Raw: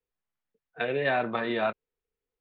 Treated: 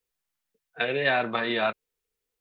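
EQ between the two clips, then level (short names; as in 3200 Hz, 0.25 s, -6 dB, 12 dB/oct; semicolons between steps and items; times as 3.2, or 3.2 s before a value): high shelf 2100 Hz +10.5 dB; 0.0 dB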